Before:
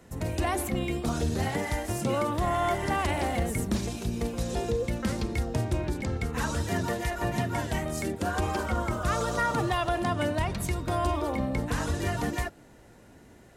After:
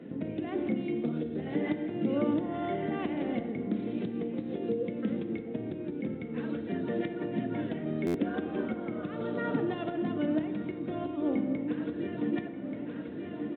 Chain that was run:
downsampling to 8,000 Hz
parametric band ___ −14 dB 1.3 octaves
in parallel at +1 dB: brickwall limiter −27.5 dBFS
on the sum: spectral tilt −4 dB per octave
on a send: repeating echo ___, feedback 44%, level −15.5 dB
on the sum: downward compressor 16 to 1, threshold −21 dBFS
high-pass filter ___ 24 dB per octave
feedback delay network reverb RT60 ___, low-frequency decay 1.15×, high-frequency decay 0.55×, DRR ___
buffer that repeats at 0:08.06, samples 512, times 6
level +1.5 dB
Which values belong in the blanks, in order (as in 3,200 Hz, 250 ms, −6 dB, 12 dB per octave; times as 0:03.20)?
950 Hz, 1,182 ms, 220 Hz, 1.9 s, 7.5 dB